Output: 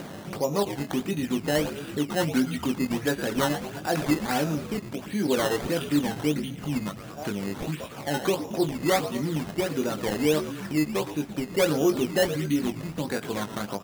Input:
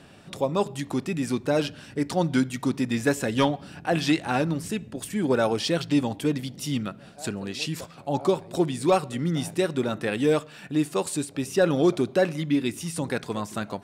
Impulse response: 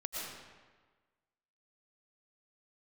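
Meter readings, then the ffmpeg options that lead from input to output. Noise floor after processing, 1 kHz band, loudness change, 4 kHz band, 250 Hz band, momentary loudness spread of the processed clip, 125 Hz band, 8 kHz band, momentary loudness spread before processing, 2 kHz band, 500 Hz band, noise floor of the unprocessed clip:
-40 dBFS, -1.5 dB, -1.0 dB, -0.5 dB, -1.0 dB, 7 LU, -2.0 dB, 0.0 dB, 8 LU, 0.0 dB, -1.5 dB, -48 dBFS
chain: -filter_complex "[0:a]asplit=2[s0][s1];[s1]adelay=20,volume=0.562[s2];[s0][s2]amix=inputs=2:normalize=0,asplit=8[s3][s4][s5][s6][s7][s8][s9][s10];[s4]adelay=113,afreqshift=-88,volume=0.224[s11];[s5]adelay=226,afreqshift=-176,volume=0.135[s12];[s6]adelay=339,afreqshift=-264,volume=0.0804[s13];[s7]adelay=452,afreqshift=-352,volume=0.0484[s14];[s8]adelay=565,afreqshift=-440,volume=0.0292[s15];[s9]adelay=678,afreqshift=-528,volume=0.0174[s16];[s10]adelay=791,afreqshift=-616,volume=0.0105[s17];[s3][s11][s12][s13][s14][s15][s16][s17]amix=inputs=8:normalize=0,asplit=2[s18][s19];[s19]alimiter=limit=0.112:level=0:latency=1:release=77,volume=0.75[s20];[s18][s20]amix=inputs=2:normalize=0,highpass=130,acrossover=split=1800[s21][s22];[s21]acompressor=mode=upward:threshold=0.0794:ratio=2.5[s23];[s23][s22]amix=inputs=2:normalize=0,aresample=8000,aresample=44100,acrusher=samples=13:mix=1:aa=0.000001:lfo=1:lforange=13:lforate=1.5,volume=0.531"

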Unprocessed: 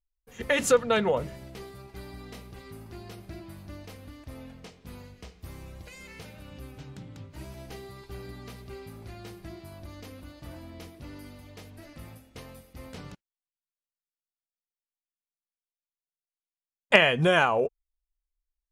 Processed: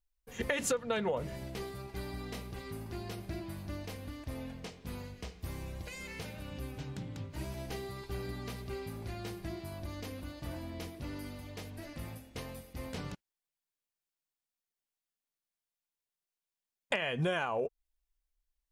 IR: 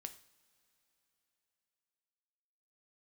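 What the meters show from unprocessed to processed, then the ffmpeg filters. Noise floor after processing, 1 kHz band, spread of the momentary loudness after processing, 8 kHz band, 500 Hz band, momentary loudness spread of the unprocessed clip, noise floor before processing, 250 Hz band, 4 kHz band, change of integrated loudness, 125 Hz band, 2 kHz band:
under -85 dBFS, -9.5 dB, 12 LU, -4.5 dB, -9.0 dB, 23 LU, under -85 dBFS, -4.5 dB, -10.0 dB, -16.0 dB, -2.0 dB, -11.0 dB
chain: -af "bandreject=f=1300:w=21,alimiter=limit=0.251:level=0:latency=1:release=449,acompressor=threshold=0.0251:ratio=5,volume=1.26"

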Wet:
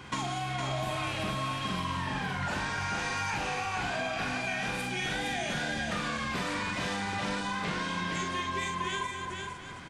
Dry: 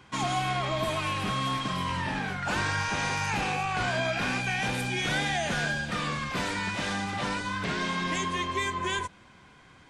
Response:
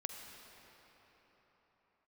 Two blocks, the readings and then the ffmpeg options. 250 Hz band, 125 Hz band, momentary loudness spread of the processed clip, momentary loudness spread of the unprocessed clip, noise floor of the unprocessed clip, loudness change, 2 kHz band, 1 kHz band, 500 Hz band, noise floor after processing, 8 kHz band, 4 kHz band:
-2.5 dB, -3.5 dB, 2 LU, 3 LU, -55 dBFS, -3.5 dB, -3.0 dB, -3.0 dB, -3.0 dB, -40 dBFS, -3.0 dB, -3.0 dB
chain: -filter_complex "[0:a]asplit=2[s0][s1];[s1]aecho=0:1:44|264:0.596|0.158[s2];[s0][s2]amix=inputs=2:normalize=0,acompressor=threshold=0.0126:ratio=10,asplit=2[s3][s4];[s4]aecho=0:1:461:0.562[s5];[s3][s5]amix=inputs=2:normalize=0,volume=2.24"

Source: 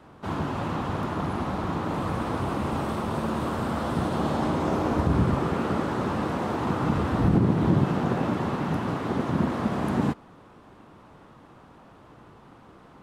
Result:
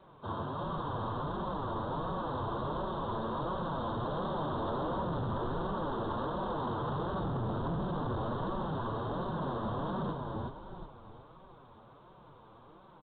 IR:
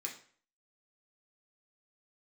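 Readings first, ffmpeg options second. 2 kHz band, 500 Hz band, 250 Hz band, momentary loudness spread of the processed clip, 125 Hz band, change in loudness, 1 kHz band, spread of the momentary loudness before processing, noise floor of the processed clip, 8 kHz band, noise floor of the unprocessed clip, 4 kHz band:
-11.5 dB, -6.5 dB, -12.0 dB, 5 LU, -10.0 dB, -9.0 dB, -5.5 dB, 7 LU, -56 dBFS, under -30 dB, -52 dBFS, -7.0 dB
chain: -filter_complex "[0:a]aecho=1:1:1.9:0.32,asplit=6[s0][s1][s2][s3][s4][s5];[s1]adelay=366,afreqshift=-56,volume=0.596[s6];[s2]adelay=732,afreqshift=-112,volume=0.245[s7];[s3]adelay=1098,afreqshift=-168,volume=0.1[s8];[s4]adelay=1464,afreqshift=-224,volume=0.0412[s9];[s5]adelay=1830,afreqshift=-280,volume=0.0168[s10];[s0][s6][s7][s8][s9][s10]amix=inputs=6:normalize=0,flanger=delay=5.2:depth=3.9:regen=9:speed=1.4:shape=sinusoidal,volume=22.4,asoftclip=hard,volume=0.0447,crystalizer=i=10:c=0,asuperstop=centerf=2300:order=4:qfactor=0.7,volume=0.531" -ar 8000 -c:a pcm_alaw

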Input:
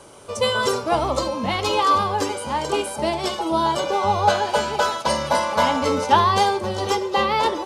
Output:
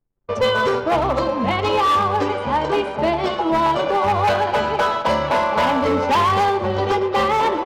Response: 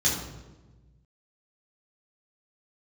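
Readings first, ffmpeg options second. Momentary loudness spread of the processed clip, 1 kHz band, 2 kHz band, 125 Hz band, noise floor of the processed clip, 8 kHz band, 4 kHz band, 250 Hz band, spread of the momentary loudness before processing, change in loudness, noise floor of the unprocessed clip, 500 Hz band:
4 LU, +2.0 dB, +2.5 dB, +3.0 dB, -28 dBFS, no reading, -2.0 dB, +3.5 dB, 6 LU, +2.0 dB, -32 dBFS, +3.0 dB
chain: -filter_complex "[0:a]asplit=2[s0][s1];[s1]acontrast=83,volume=0.794[s2];[s0][s2]amix=inputs=2:normalize=0,highpass=46,aeval=exprs='sgn(val(0))*max(abs(val(0))-0.0266,0)':c=same,lowpass=2600,asoftclip=type=hard:threshold=0.335,aecho=1:1:112|224|336|448|560|672:0.158|0.0951|0.0571|0.0342|0.0205|0.0123,anlmdn=15.8,alimiter=limit=0.251:level=0:latency=1:release=209"

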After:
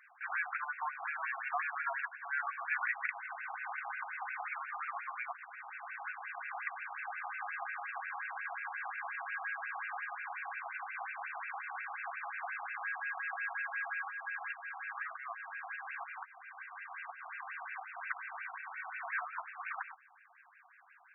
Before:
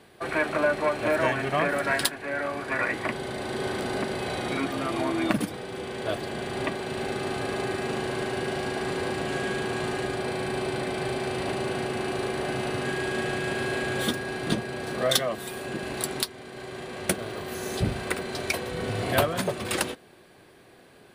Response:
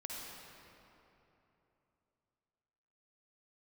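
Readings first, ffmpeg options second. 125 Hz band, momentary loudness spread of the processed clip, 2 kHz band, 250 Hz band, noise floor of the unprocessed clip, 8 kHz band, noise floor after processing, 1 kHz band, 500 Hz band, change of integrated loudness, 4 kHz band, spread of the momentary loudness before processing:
under -40 dB, 8 LU, -6.0 dB, under -40 dB, -53 dBFS, under -40 dB, -62 dBFS, -7.5 dB, -27.0 dB, -11.5 dB, under -35 dB, 7 LU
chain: -filter_complex "[0:a]asubboost=boost=5.5:cutoff=180,acrossover=split=210[s0][s1];[s1]acompressor=threshold=0.0355:ratio=8[s2];[s0][s2]amix=inputs=2:normalize=0,afftfilt=real='re*between(b*sr/1024,930*pow(2000/930,0.5+0.5*sin(2*PI*5.6*pts/sr))/1.41,930*pow(2000/930,0.5+0.5*sin(2*PI*5.6*pts/sr))*1.41)':imag='im*between(b*sr/1024,930*pow(2000/930,0.5+0.5*sin(2*PI*5.6*pts/sr))/1.41,930*pow(2000/930,0.5+0.5*sin(2*PI*5.6*pts/sr))*1.41)':win_size=1024:overlap=0.75,volume=1.12"

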